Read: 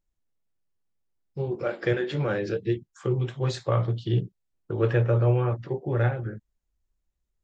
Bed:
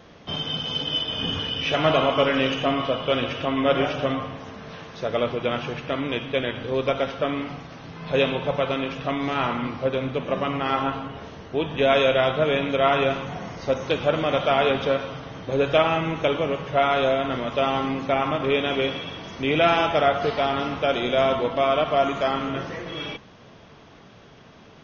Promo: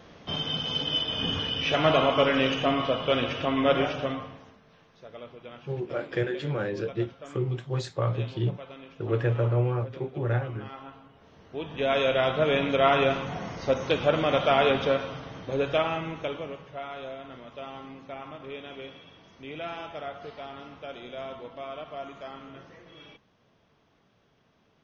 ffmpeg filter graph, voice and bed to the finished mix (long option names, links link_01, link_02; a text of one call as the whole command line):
ffmpeg -i stem1.wav -i stem2.wav -filter_complex "[0:a]adelay=4300,volume=-3dB[link_01];[1:a]volume=16dB,afade=type=out:start_time=3.7:duration=0.91:silence=0.133352,afade=type=in:start_time=11.19:duration=1.43:silence=0.125893,afade=type=out:start_time=14.74:duration=2.05:silence=0.158489[link_02];[link_01][link_02]amix=inputs=2:normalize=0" out.wav